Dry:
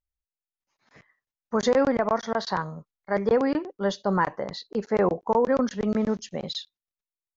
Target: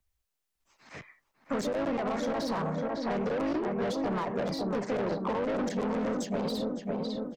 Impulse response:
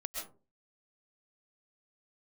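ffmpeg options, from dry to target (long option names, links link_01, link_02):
-filter_complex "[0:a]alimiter=limit=-17dB:level=0:latency=1:release=11,acompressor=threshold=-26dB:ratio=5,asplit=2[link_01][link_02];[link_02]asetrate=52444,aresample=44100,atempo=0.840896,volume=-4dB[link_03];[link_01][link_03]amix=inputs=2:normalize=0,asplit=2[link_04][link_05];[link_05]adelay=551,lowpass=frequency=1300:poles=1,volume=-7dB,asplit=2[link_06][link_07];[link_07]adelay=551,lowpass=frequency=1300:poles=1,volume=0.5,asplit=2[link_08][link_09];[link_09]adelay=551,lowpass=frequency=1300:poles=1,volume=0.5,asplit=2[link_10][link_11];[link_11]adelay=551,lowpass=frequency=1300:poles=1,volume=0.5,asplit=2[link_12][link_13];[link_13]adelay=551,lowpass=frequency=1300:poles=1,volume=0.5,asplit=2[link_14][link_15];[link_15]adelay=551,lowpass=frequency=1300:poles=1,volume=0.5[link_16];[link_06][link_08][link_10][link_12][link_14][link_16]amix=inputs=6:normalize=0[link_17];[link_04][link_17]amix=inputs=2:normalize=0,asoftclip=type=tanh:threshold=-31dB,acrossover=split=130|290|1100[link_18][link_19][link_20][link_21];[link_18]acompressor=threshold=-58dB:ratio=4[link_22];[link_19]acompressor=threshold=-43dB:ratio=4[link_23];[link_20]acompressor=threshold=-40dB:ratio=4[link_24];[link_21]acompressor=threshold=-51dB:ratio=4[link_25];[link_22][link_23][link_24][link_25]amix=inputs=4:normalize=0,volume=8.5dB"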